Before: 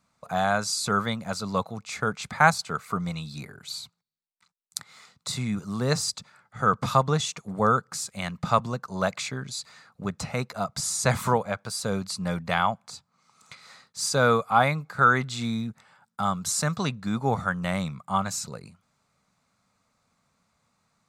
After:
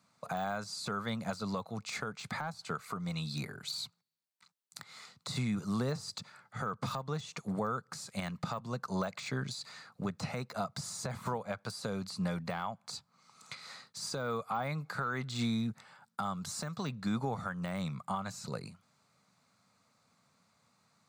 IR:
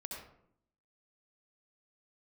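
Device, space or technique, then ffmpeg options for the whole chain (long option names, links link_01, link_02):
broadcast voice chain: -af "highpass=frequency=92:width=0.5412,highpass=frequency=92:width=1.3066,deesser=0.95,acompressor=threshold=-29dB:ratio=4,equalizer=frequency=4400:width_type=o:width=0.3:gain=4,alimiter=limit=-24dB:level=0:latency=1:release=386"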